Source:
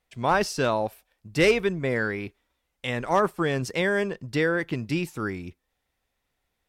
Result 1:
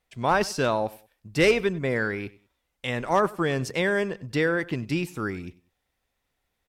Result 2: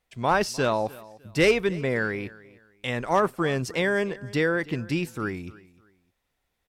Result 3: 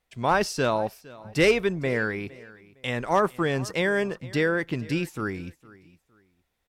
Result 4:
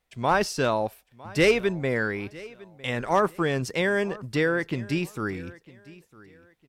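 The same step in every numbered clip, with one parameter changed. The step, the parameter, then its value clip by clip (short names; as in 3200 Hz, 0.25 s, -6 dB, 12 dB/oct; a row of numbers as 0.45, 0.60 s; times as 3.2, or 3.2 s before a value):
feedback echo, time: 96, 303, 460, 955 ms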